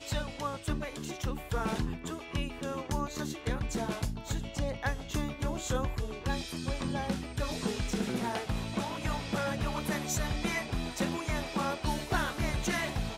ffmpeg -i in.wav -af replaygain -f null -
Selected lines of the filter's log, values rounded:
track_gain = +16.0 dB
track_peak = 0.104